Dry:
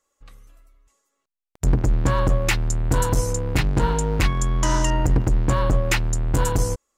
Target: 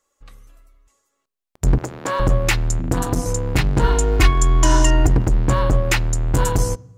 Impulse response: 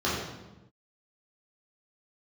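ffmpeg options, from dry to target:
-filter_complex "[0:a]asettb=1/sr,asplit=3[s0][s1][s2];[s0]atrim=end=1.784[s3];[s1]atrim=start=1.78:end=2.2,asetpts=PTS-STARTPTS,afade=t=in:d=0.004:c=qsin,afade=t=out:st=0.416:d=0.004:c=qsin,highpass=400[s4];[s2]atrim=start=2.196[s5];[s3][s4]acrossfade=d=0.004:c1=hsin:c2=qsin[s6];[s6][s5]acrossfade=d=0.004:c1=qsin:c2=hsin,asettb=1/sr,asplit=3[s7][s8][s9];[s7]atrim=end=2.794[s10];[s8]atrim=start=2.79:end=3.26,asetpts=PTS-STARTPTS,afade=t=in:d=0.004:c=qsin,afade=t=out:st=0.466:d=0.004:c=qsin,tremolo=f=210:d=1[s11];[s9]atrim=start=3.256[s12];[s10][s11]acrossfade=d=0.004:c1=hsin:c2=qsin[s13];[s13][s12]acrossfade=d=0.004:c1=qsin:c2=hsin,asettb=1/sr,asplit=3[s14][s15][s16];[s14]atrim=end=3.844[s17];[s15]atrim=start=3.84:end=5.09,asetpts=PTS-STARTPTS,afade=t=in:d=0.004:c=qsin,afade=t=out:st=1.246:d=0.004:c=qsin,aecho=1:1:2.8:0.87,atrim=end_sample=55125[s18];[s16]atrim=start=5.086[s19];[s17][s18]acrossfade=d=0.004:c1=hsin:c2=qsin[s20];[s20][s19]acrossfade=d=0.004:c1=qsin:c2=hsin,asplit=2[s21][s22];[1:a]atrim=start_sample=2205,afade=t=out:st=0.4:d=0.01,atrim=end_sample=18081[s23];[s22][s23]afir=irnorm=-1:irlink=0,volume=0.0188[s24];[s21][s24]amix=inputs=2:normalize=0,volume=1.33"

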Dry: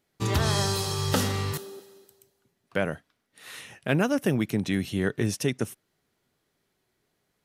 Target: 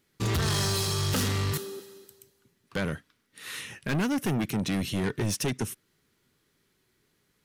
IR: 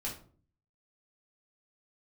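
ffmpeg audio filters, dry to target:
-af "equalizer=f=690:t=o:w=0.68:g=-10.5,asoftclip=type=tanh:threshold=0.0376,volume=1.78"

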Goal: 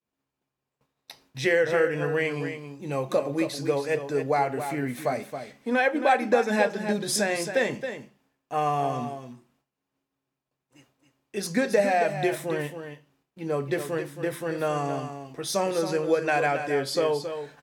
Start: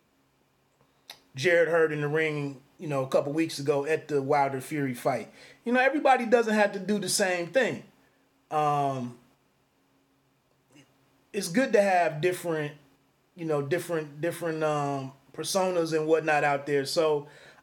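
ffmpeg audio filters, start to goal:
-filter_complex "[0:a]agate=range=0.0224:threshold=0.00158:ratio=3:detection=peak,asplit=2[s0][s1];[s1]aecho=0:1:272:0.355[s2];[s0][s2]amix=inputs=2:normalize=0"

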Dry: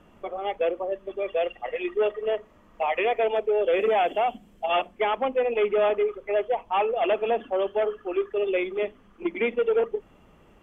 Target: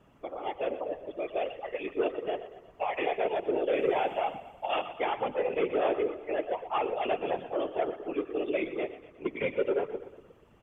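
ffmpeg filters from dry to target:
-af "aecho=1:1:120|240|360|480|600:0.224|0.112|0.056|0.028|0.014,afftfilt=real='hypot(re,im)*cos(2*PI*random(0))':imag='hypot(re,im)*sin(2*PI*random(1))':win_size=512:overlap=0.75"

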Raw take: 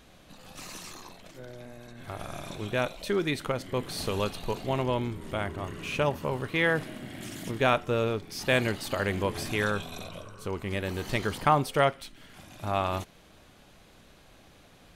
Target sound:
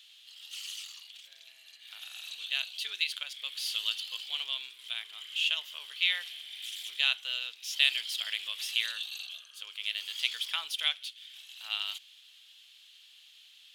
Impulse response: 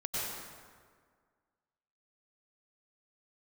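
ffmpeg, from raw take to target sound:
-af "highpass=f=2900:t=q:w=5.3,asetrate=48000,aresample=44100,volume=0.75"

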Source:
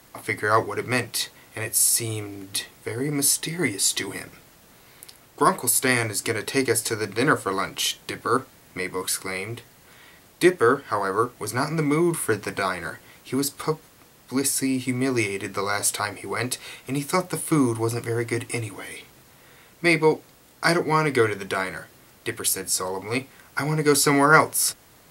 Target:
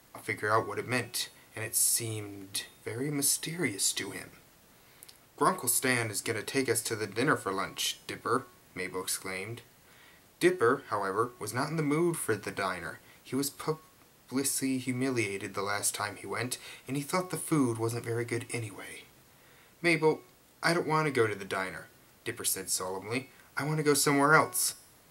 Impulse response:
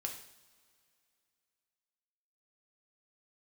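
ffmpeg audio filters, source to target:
-af "bandreject=f=367:t=h:w=4,bandreject=f=734:t=h:w=4,bandreject=f=1101:t=h:w=4,bandreject=f=1468:t=h:w=4,bandreject=f=1835:t=h:w=4,bandreject=f=2202:t=h:w=4,bandreject=f=2569:t=h:w=4,bandreject=f=2936:t=h:w=4,bandreject=f=3303:t=h:w=4,bandreject=f=3670:t=h:w=4,bandreject=f=4037:t=h:w=4,bandreject=f=4404:t=h:w=4,bandreject=f=4771:t=h:w=4,bandreject=f=5138:t=h:w=4,bandreject=f=5505:t=h:w=4,bandreject=f=5872:t=h:w=4,bandreject=f=6239:t=h:w=4,bandreject=f=6606:t=h:w=4,bandreject=f=6973:t=h:w=4,bandreject=f=7340:t=h:w=4,bandreject=f=7707:t=h:w=4,bandreject=f=8074:t=h:w=4,bandreject=f=8441:t=h:w=4,bandreject=f=8808:t=h:w=4,bandreject=f=9175:t=h:w=4,bandreject=f=9542:t=h:w=4,bandreject=f=9909:t=h:w=4,bandreject=f=10276:t=h:w=4,bandreject=f=10643:t=h:w=4,bandreject=f=11010:t=h:w=4,bandreject=f=11377:t=h:w=4,bandreject=f=11744:t=h:w=4,bandreject=f=12111:t=h:w=4,bandreject=f=12478:t=h:w=4,bandreject=f=12845:t=h:w=4,bandreject=f=13212:t=h:w=4,bandreject=f=13579:t=h:w=4,volume=0.447"

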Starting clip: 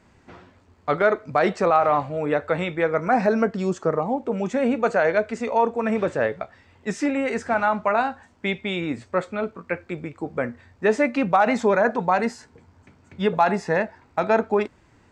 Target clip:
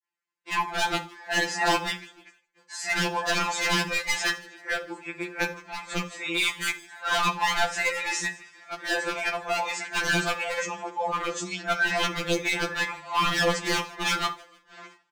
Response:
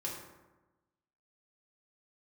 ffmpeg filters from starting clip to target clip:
-filter_complex "[0:a]areverse,highpass=f=600:p=1,agate=range=0.02:threshold=0.00178:ratio=16:detection=peak,tiltshelf=f=780:g=-8,aeval=exprs='0.106*(abs(mod(val(0)/0.106+3,4)-2)-1)':c=same,asplit=4[s0][s1][s2][s3];[s1]adelay=155,afreqshift=-49,volume=0.075[s4];[s2]adelay=310,afreqshift=-98,volume=0.0309[s5];[s3]adelay=465,afreqshift=-147,volume=0.0126[s6];[s0][s4][s5][s6]amix=inputs=4:normalize=0,asplit=2[s7][s8];[1:a]atrim=start_sample=2205,atrim=end_sample=4410[s9];[s8][s9]afir=irnorm=-1:irlink=0,volume=0.562[s10];[s7][s10]amix=inputs=2:normalize=0,afftfilt=real='re*2.83*eq(mod(b,8),0)':imag='im*2.83*eq(mod(b,8),0)':win_size=2048:overlap=0.75"

